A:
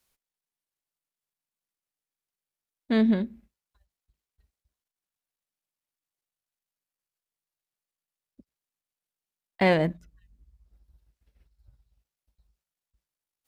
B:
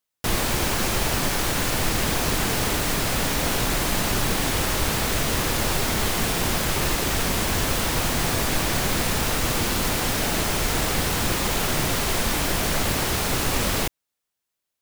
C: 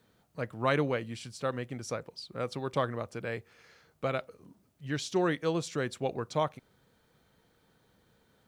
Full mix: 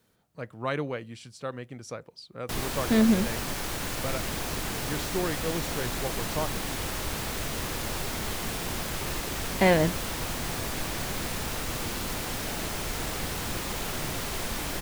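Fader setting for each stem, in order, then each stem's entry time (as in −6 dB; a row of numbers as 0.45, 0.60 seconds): +0.5, −9.0, −2.5 decibels; 0.00, 2.25, 0.00 seconds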